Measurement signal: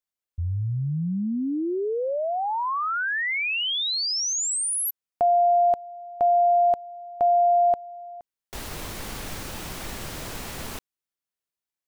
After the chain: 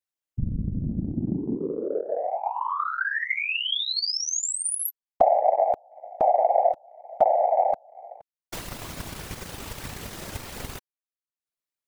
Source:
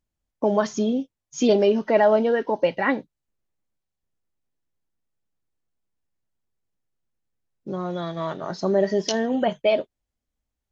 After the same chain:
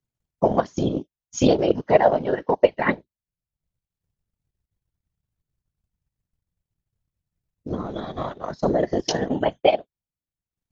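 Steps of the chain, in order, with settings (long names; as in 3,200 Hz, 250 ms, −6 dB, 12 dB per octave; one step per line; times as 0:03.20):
random phases in short frames
transient designer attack +7 dB, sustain −10 dB
level −2.5 dB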